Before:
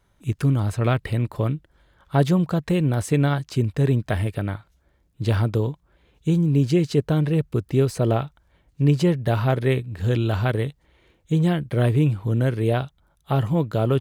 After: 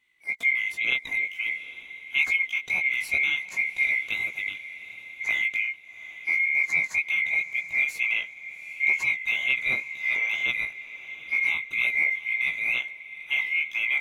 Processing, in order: split-band scrambler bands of 2 kHz; chorus 2.1 Hz, delay 15.5 ms, depth 5.5 ms; echo that smears into a reverb 801 ms, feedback 43%, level -14.5 dB; trim -3 dB

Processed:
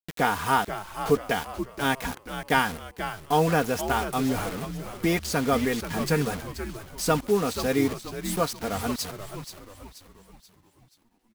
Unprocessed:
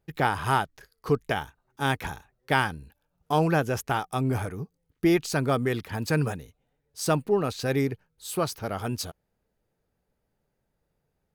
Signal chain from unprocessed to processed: comb 4.2 ms, depth 61%; bit crusher 6-bit; frequency-shifting echo 481 ms, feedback 45%, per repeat -93 Hz, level -10 dB

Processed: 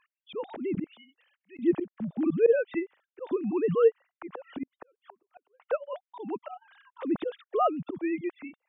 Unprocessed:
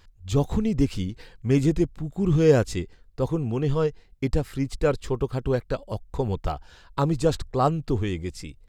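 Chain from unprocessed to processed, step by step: formants replaced by sine waves; slow attack 137 ms; 0.84–1.59 s: differentiator; 4.63–5.60 s: inverted gate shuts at -33 dBFS, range -37 dB

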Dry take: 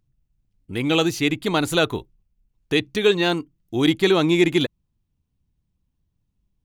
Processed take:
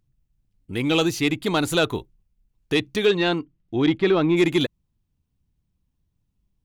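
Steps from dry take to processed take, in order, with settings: 3.05–4.36 s: low-pass 4.8 kHz -> 2.1 kHz 12 dB/octave; saturation -9 dBFS, distortion -20 dB

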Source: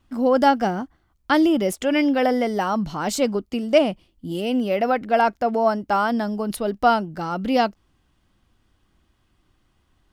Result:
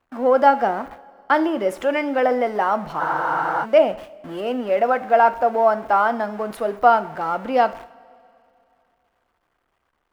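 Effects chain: jump at every zero crossing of -32 dBFS; gate -34 dBFS, range -29 dB; three-band isolator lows -15 dB, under 430 Hz, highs -16 dB, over 2.1 kHz; two-slope reverb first 0.54 s, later 2.7 s, from -17 dB, DRR 11.5 dB; spectral freeze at 3.02 s, 0.62 s; trim +3.5 dB

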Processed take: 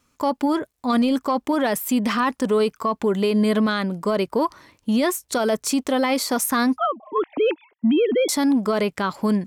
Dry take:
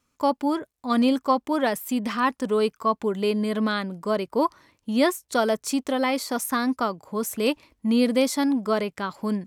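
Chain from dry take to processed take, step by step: 6.78–8.29 s: formants replaced by sine waves; in parallel at -9 dB: saturation -16.5 dBFS, distortion -16 dB; on the sum: peak limiter -17.5 dBFS, peak gain reduction 10 dB; trim +4.5 dB

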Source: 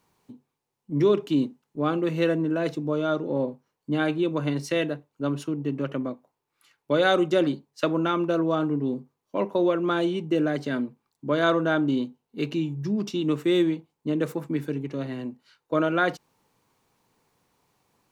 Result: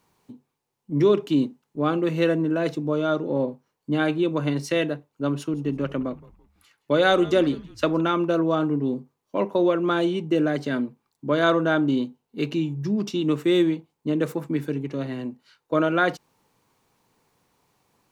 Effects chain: 5.36–8.01 s: frequency-shifting echo 167 ms, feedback 36%, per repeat -110 Hz, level -20 dB; trim +2 dB

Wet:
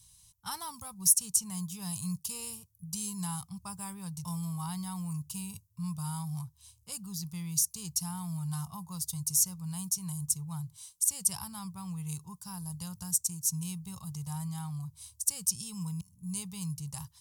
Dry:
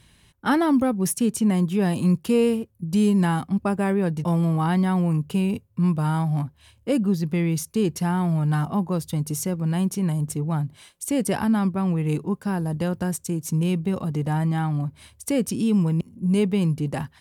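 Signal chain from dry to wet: FFT filter 110 Hz 0 dB, 180 Hz -7 dB, 260 Hz -29 dB, 570 Hz -24 dB, 1 kHz -2 dB, 1.7 kHz -16 dB, 2.9 kHz -5 dB, 5.8 kHz +14 dB; trim -8.5 dB

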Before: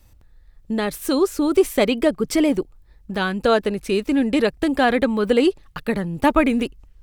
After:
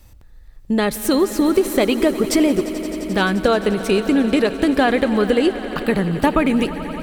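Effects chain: compression, threshold -18 dBFS, peak gain reduction 8 dB; on a send: echo with a slow build-up 87 ms, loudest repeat 5, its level -18 dB; on the sum: trim +5.5 dB

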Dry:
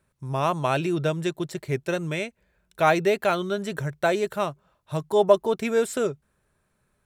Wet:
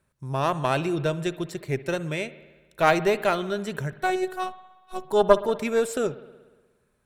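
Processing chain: Chebyshev shaper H 2 -9 dB, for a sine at -4.5 dBFS; 3.92–5.05 s: robot voice 371 Hz; spring tank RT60 1.3 s, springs 59 ms, chirp 25 ms, DRR 15 dB; trim -1 dB

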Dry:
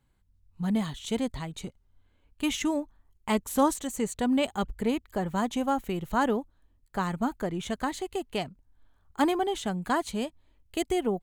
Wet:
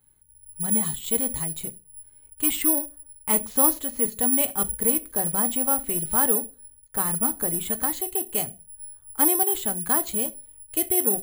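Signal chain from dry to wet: reverberation RT60 0.30 s, pre-delay 7 ms, DRR 11 dB; careless resampling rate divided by 4×, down filtered, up zero stuff; in parallel at -7 dB: hard clipper -23.5 dBFS, distortion -3 dB; on the sum: trim -2.5 dB

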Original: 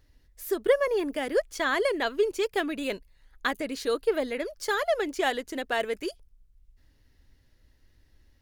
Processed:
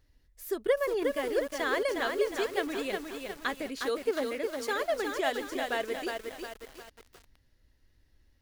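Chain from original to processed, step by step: 3.82–4.78 s: high-pass 89 Hz 12 dB/octave; bit-crushed delay 360 ms, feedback 55%, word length 7-bit, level -4 dB; trim -4.5 dB

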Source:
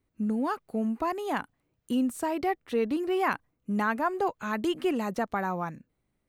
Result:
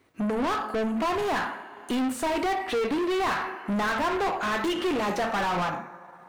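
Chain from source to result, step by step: two-slope reverb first 0.49 s, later 1.8 s, from -18 dB, DRR 5.5 dB; transient shaper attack +3 dB, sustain -5 dB; overdrive pedal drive 34 dB, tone 2.8 kHz, clips at -13.5 dBFS; trim -6 dB

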